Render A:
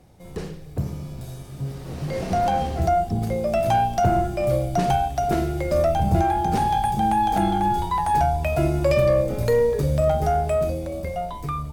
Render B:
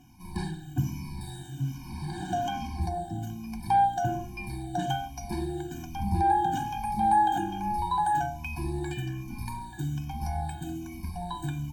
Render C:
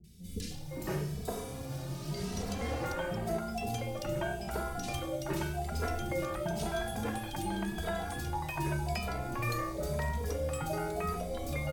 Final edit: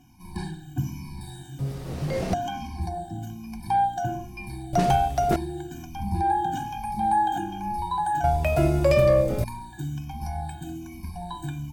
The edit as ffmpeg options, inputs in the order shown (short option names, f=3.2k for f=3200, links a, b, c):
-filter_complex "[0:a]asplit=3[a][b][c];[1:a]asplit=4[d][e][f][g];[d]atrim=end=1.592[h];[a]atrim=start=1.588:end=2.342[i];[e]atrim=start=2.338:end=4.732[j];[b]atrim=start=4.728:end=5.362[k];[f]atrim=start=5.358:end=8.242[l];[c]atrim=start=8.238:end=9.442[m];[g]atrim=start=9.438[n];[h][i]acrossfade=d=0.004:c1=hsin:c2=hsin[o];[o][j]acrossfade=d=0.004:c1=hsin:c2=hsin[p];[p][k]acrossfade=d=0.004:c1=hsin:c2=hsin[q];[q][l]acrossfade=d=0.004:c1=hsin:c2=hsin[r];[r][m]acrossfade=d=0.004:c1=hsin:c2=hsin[s];[s][n]acrossfade=d=0.004:c1=hsin:c2=hsin"